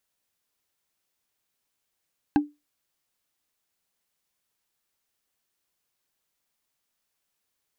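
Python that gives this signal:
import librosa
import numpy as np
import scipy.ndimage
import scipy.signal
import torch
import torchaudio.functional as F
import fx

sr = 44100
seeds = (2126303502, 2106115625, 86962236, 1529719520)

y = fx.strike_wood(sr, length_s=0.45, level_db=-13, body='bar', hz=294.0, decay_s=0.22, tilt_db=6.0, modes=5)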